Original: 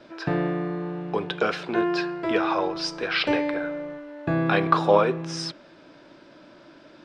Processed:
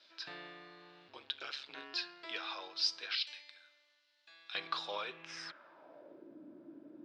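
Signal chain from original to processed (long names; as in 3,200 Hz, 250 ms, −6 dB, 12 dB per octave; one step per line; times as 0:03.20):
0:03.15–0:04.55: first difference
band-pass filter sweep 4,200 Hz → 290 Hz, 0:05.01–0:06.36
0:01.08–0:01.94: ring modulation 69 Hz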